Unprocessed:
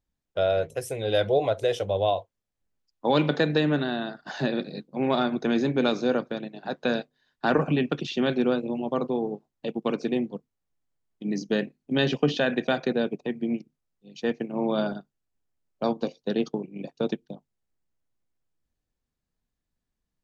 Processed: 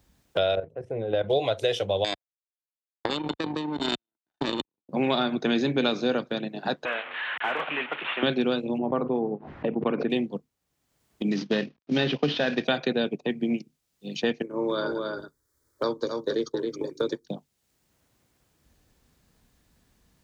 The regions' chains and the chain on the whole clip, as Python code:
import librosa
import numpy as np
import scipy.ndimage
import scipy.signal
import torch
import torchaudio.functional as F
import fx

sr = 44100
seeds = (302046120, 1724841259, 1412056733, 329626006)

y = fx.chain(x, sr, fx.lowpass(hz=1100.0, slope=12),
    fx.level_steps(step_db=12), at=(0.55, 1.3))
y = fx.chain(y, sr, fx.small_body(hz=(310.0, 3600.0), ring_ms=55, db=17),
    fx.level_steps(step_db=23),
    fx.power_curve(exponent=3.0), at=(2.04, 4.89))
y = fx.chain(y, sr, fx.delta_mod(bps=16000, step_db=-34.0),
    fx.highpass(hz=990.0, slope=12),
    fx.overload_stage(gain_db=26.5), at=(6.85, 8.23))
y = fx.chain(y, sr, fx.lowpass(hz=1700.0, slope=24),
    fx.pre_swell(db_per_s=91.0), at=(8.78, 10.1))
y = fx.chain(y, sr, fx.cvsd(bps=32000),
    fx.air_absorb(metres=120.0), at=(11.31, 12.65))
y = fx.chain(y, sr, fx.fixed_phaser(hz=730.0, stages=6),
    fx.echo_single(ms=272, db=-6.0), at=(14.42, 17.26))
y = scipy.signal.sosfilt(scipy.signal.butter(2, 41.0, 'highpass', fs=sr, output='sos'), y)
y = fx.dynamic_eq(y, sr, hz=3400.0, q=1.0, threshold_db=-46.0, ratio=4.0, max_db=8)
y = fx.band_squash(y, sr, depth_pct=70)